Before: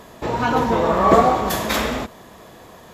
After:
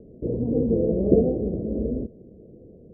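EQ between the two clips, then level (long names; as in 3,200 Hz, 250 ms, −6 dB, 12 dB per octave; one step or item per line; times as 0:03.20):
Butterworth low-pass 500 Hz 48 dB per octave
0.0 dB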